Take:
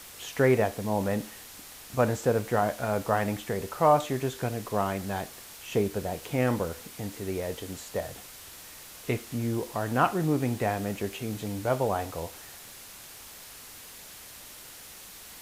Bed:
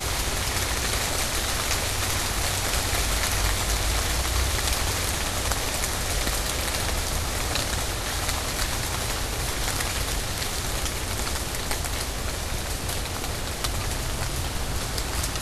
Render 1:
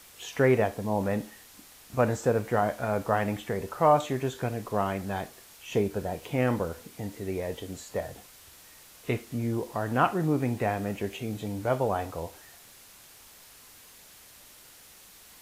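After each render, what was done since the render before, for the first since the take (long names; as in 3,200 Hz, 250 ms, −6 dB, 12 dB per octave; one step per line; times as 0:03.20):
noise reduction from a noise print 6 dB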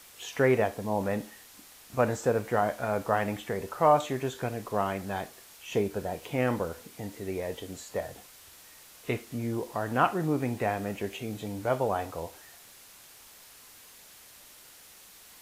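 low-shelf EQ 240 Hz −4.5 dB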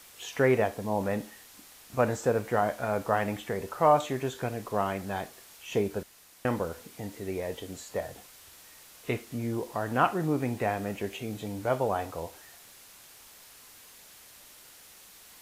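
0:06.03–0:06.45: fill with room tone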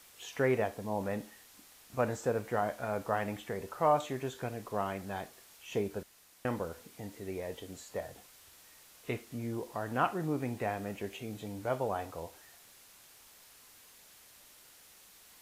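level −5.5 dB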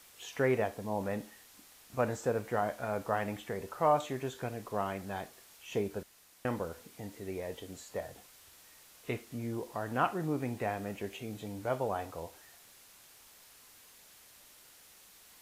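no processing that can be heard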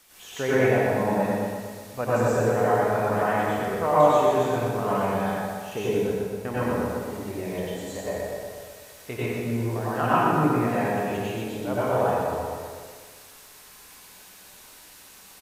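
on a send: repeating echo 122 ms, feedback 53%, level −6 dB
on the sum: dense smooth reverb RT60 1.5 s, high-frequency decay 0.6×, pre-delay 80 ms, DRR −9 dB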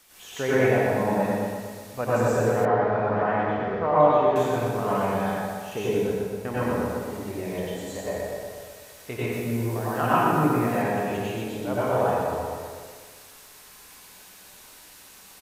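0:02.65–0:04.36: Gaussian smoothing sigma 2.5 samples
0:09.32–0:10.82: high-shelf EQ 10,000 Hz +7.5 dB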